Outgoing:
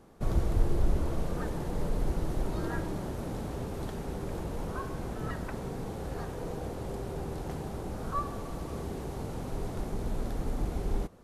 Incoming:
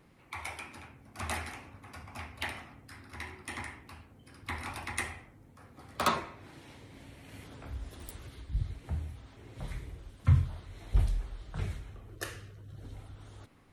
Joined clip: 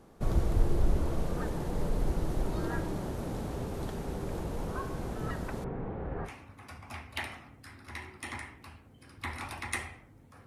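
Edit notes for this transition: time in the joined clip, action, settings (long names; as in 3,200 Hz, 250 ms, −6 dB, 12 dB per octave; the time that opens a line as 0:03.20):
outgoing
0:05.64–0:06.30: low-pass filter 2,200 Hz 24 dB per octave
0:06.27: continue with incoming from 0:01.52, crossfade 0.06 s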